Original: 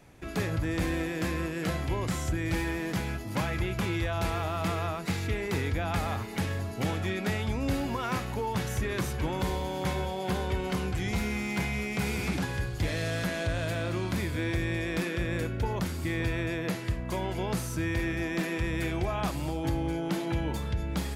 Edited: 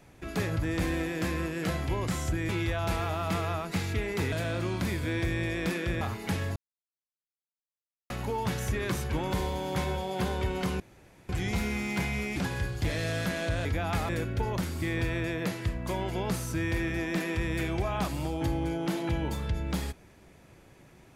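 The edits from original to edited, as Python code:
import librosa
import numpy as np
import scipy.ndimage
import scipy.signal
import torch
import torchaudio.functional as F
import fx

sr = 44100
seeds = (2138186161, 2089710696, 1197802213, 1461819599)

y = fx.edit(x, sr, fx.cut(start_s=2.49, length_s=1.34),
    fx.swap(start_s=5.66, length_s=0.44, other_s=13.63, other_length_s=1.69),
    fx.silence(start_s=6.65, length_s=1.54),
    fx.insert_room_tone(at_s=10.89, length_s=0.49),
    fx.cut(start_s=11.96, length_s=0.38), tone=tone)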